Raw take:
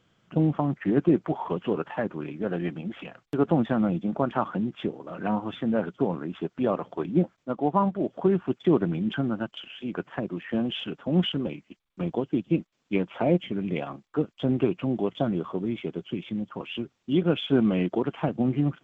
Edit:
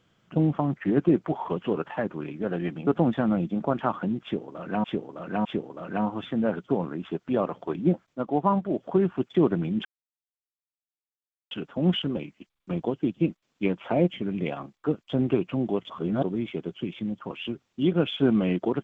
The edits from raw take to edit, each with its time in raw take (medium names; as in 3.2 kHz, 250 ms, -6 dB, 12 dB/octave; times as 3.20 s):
2.87–3.39 s: delete
4.75–5.36 s: loop, 3 plays
9.15–10.81 s: mute
15.20–15.53 s: reverse